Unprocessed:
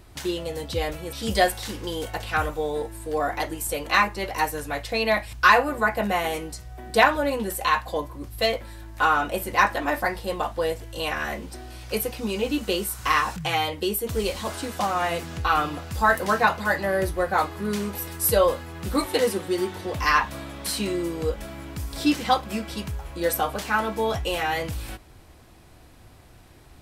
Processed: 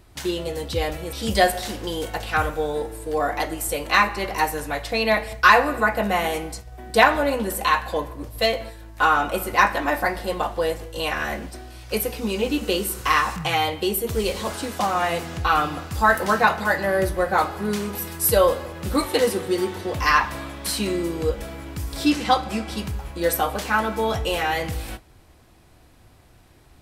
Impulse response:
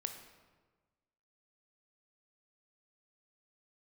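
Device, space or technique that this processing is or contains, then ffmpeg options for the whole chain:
keyed gated reverb: -filter_complex "[0:a]asplit=3[link_01][link_02][link_03];[1:a]atrim=start_sample=2205[link_04];[link_02][link_04]afir=irnorm=-1:irlink=0[link_05];[link_03]apad=whole_len=1182369[link_06];[link_05][link_06]sidechaingate=range=-33dB:threshold=-37dB:ratio=16:detection=peak,volume=-1dB[link_07];[link_01][link_07]amix=inputs=2:normalize=0,asettb=1/sr,asplit=3[link_08][link_09][link_10];[link_08]atrim=end=22.104[link_11];[link_09]atrim=start=22.1:end=22.72,asetpts=PTS-STARTPTS,afade=type=in:duration=0.004:curve=qsin,afade=type=out:start_time=0.616:duration=0.004:curve=qsin,lowpass=11000[link_12];[link_10]atrim=start=22.716[link_13];[link_11][link_12]acrossfade=duration=0.004:curve1=hsin:curve2=qsin[link_14];[link_14][link_13]acrossfade=duration=0.004:curve1=qsin:curve2=hsin,volume=-2.5dB"

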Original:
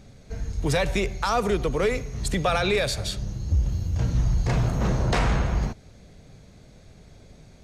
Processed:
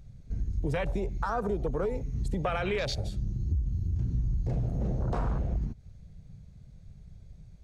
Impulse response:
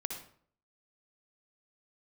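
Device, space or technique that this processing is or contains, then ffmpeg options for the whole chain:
ASMR close-microphone chain: -af "lowshelf=frequency=100:gain=3,acompressor=threshold=-27dB:ratio=4,highshelf=frequency=7000:gain=3.5,afwtdn=0.02"

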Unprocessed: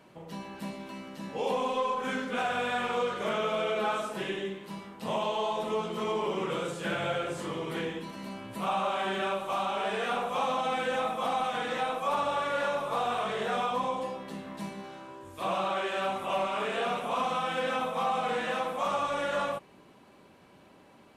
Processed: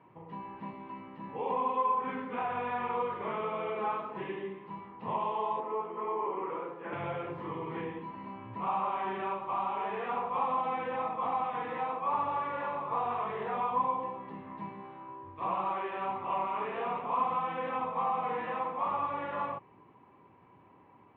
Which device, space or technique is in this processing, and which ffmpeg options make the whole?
bass cabinet: -filter_complex "[0:a]highpass=64,equalizer=frequency=110:width_type=q:width=4:gain=7,equalizer=frequency=210:width_type=q:width=4:gain=-5,equalizer=frequency=600:width_type=q:width=4:gain=-8,equalizer=frequency=990:width_type=q:width=4:gain=8,equalizer=frequency=1500:width_type=q:width=4:gain=-9,lowpass=frequency=2200:width=0.5412,lowpass=frequency=2200:width=1.3066,asettb=1/sr,asplit=3[link_01][link_02][link_03];[link_01]atrim=end=5.604[link_04];[link_02]atrim=start=5.6:end=6.93,asetpts=PTS-STARTPTS,afade=type=in:duration=0.004:curve=qsin,afade=type=out:start_time=1.326:duration=0.004:curve=qsin,acrossover=split=250 2400:gain=0.0794 1 0.141[link_05][link_06][link_07];[link_05][link_06][link_07]amix=inputs=3:normalize=0[link_08];[link_03]atrim=start=6.926[link_09];[link_04][link_08]acrossfade=duration=0.004:curve1=hsin:curve2=qsin[link_10];[link_10][link_09]acrossfade=duration=0.004:curve1=qsin:curve2=hsin,volume=-2.5dB"

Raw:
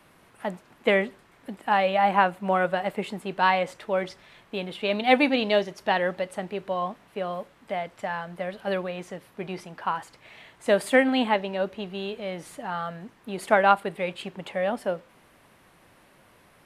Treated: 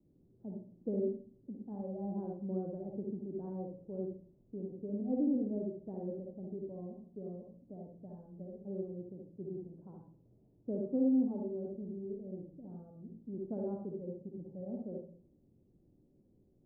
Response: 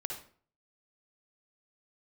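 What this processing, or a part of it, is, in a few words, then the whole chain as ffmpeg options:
next room: -filter_complex "[0:a]asettb=1/sr,asplit=3[link_01][link_02][link_03];[link_01]atrim=end=10.754[link_04];[link_02]atrim=start=10.75:end=11.6,asetpts=PTS-STARTPTS,afade=type=in:duration=0.004:curve=qsin,afade=type=out:start_time=0.846:duration=0.004:curve=qsin,highshelf=frequency=1800:width_type=q:width=3:gain=-11.5[link_05];[link_03]atrim=start=11.596[link_06];[link_04][link_05]acrossfade=duration=0.004:curve1=hsin:curve2=qsin[link_07];[link_07][link_06]acrossfade=duration=0.004:curve1=qsin:curve2=hsin,lowpass=frequency=360:width=0.5412,lowpass=frequency=360:width=1.3066[link_08];[1:a]atrim=start_sample=2205[link_09];[link_08][link_09]afir=irnorm=-1:irlink=0,volume=-5.5dB"

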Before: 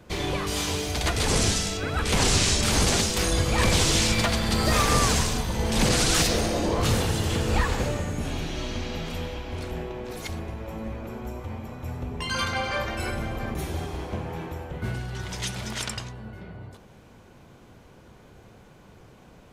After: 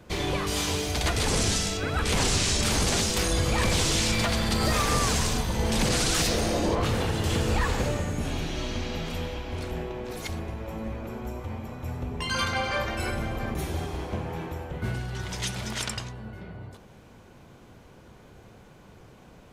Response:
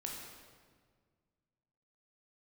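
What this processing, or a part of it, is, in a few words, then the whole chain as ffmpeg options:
clipper into limiter: -filter_complex "[0:a]asoftclip=type=hard:threshold=-12dB,alimiter=limit=-15.5dB:level=0:latency=1:release=35,asettb=1/sr,asplit=3[link_01][link_02][link_03];[link_01]atrim=end=6.754[link_04];[link_02]atrim=start=6.75:end=7.24,asetpts=PTS-STARTPTS,afade=type=in:duration=0.004:curve=qsin,afade=type=out:start_time=0.486:duration=0.004:curve=qsin,bass=frequency=250:gain=-2,treble=frequency=4000:gain=-8[link_05];[link_03]atrim=start=7.236[link_06];[link_04][link_05]acrossfade=duration=0.004:curve1=hsin:curve2=qsin[link_07];[link_07][link_06]acrossfade=duration=0.004:curve1=qsin:curve2=hsin"

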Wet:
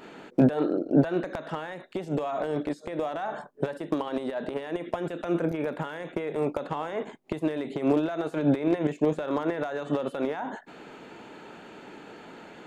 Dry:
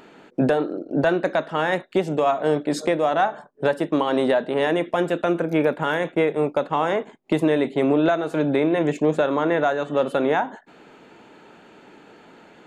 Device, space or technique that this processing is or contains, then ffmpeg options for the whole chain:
de-esser from a sidechain: -filter_complex "[0:a]asplit=2[link_01][link_02];[link_02]highpass=5700,apad=whole_len=558526[link_03];[link_01][link_03]sidechaincompress=threshold=-56dB:ratio=10:attack=0.52:release=73,volume=2.5dB"

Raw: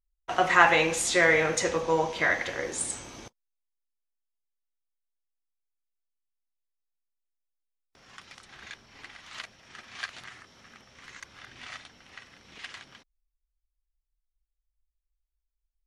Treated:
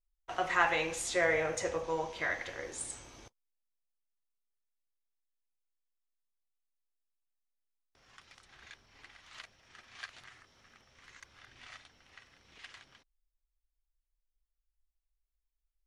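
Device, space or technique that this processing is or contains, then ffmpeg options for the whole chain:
low shelf boost with a cut just above: -filter_complex "[0:a]asettb=1/sr,asplit=3[link_01][link_02][link_03];[link_01]atrim=end=1.134[link_04];[link_02]atrim=start=1.13:end=1.84,asetpts=PTS-STARTPTS,afade=type=in:duration=0.004:curve=qsin,afade=type=out:start_time=0.706:duration=0.004:curve=qsin,equalizer=frequency=100:width_type=o:width=0.67:gain=5,equalizer=frequency=630:width_type=o:width=0.67:gain=6,equalizer=frequency=4000:width_type=o:width=0.67:gain=-4[link_05];[link_03]atrim=start=1.836[link_06];[link_04][link_05]acrossfade=duration=0.004:curve1=hsin:curve2=qsin[link_07];[link_07][link_06]acrossfade=duration=0.004:curve1=qsin:curve2=hsin,lowshelf=frequency=69:gain=8,equalizer=frequency=200:width_type=o:width=0.91:gain=-5,volume=-9dB"

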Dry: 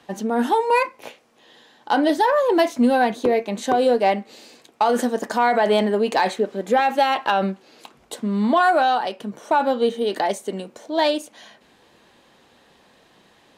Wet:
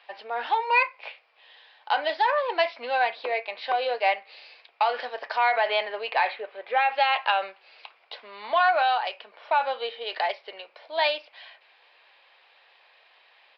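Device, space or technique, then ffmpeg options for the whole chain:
musical greeting card: -filter_complex "[0:a]aresample=11025,aresample=44100,highpass=frequency=600:width=0.5412,highpass=frequency=600:width=1.3066,equalizer=frequency=2400:width_type=o:width=0.59:gain=9.5,asettb=1/sr,asplit=3[link_01][link_02][link_03];[link_01]atrim=end=6.104[link_04];[link_02]atrim=start=6.1:end=6.92,asetpts=PTS-STARTPTS,afade=type=in:duration=0.004:curve=qsin,afade=type=out:start_time=0.816:duration=0.004:curve=qsin,lowpass=3200[link_05];[link_03]atrim=start=6.916[link_06];[link_04][link_05]acrossfade=duration=0.004:curve1=hsin:curve2=qsin[link_07];[link_07][link_06]acrossfade=duration=0.004:curve1=qsin:curve2=hsin,volume=-4dB"

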